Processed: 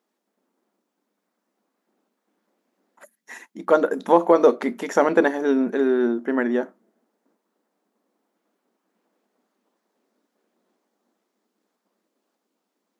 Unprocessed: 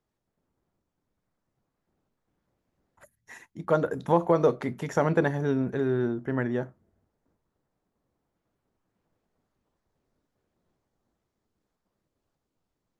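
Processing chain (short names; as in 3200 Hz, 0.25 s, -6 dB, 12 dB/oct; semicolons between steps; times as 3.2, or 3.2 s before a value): brick-wall FIR high-pass 190 Hz; gain +7 dB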